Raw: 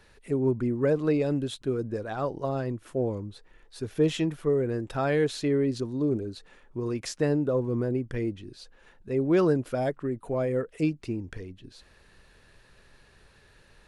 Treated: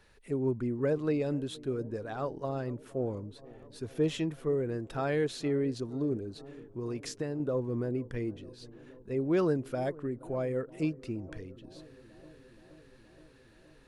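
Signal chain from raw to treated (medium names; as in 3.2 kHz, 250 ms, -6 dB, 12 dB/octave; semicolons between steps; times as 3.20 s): 6.13–7.40 s: compression, threshold -26 dBFS, peak gain reduction 6 dB; bucket-brigade echo 472 ms, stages 4096, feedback 76%, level -21 dB; trim -5 dB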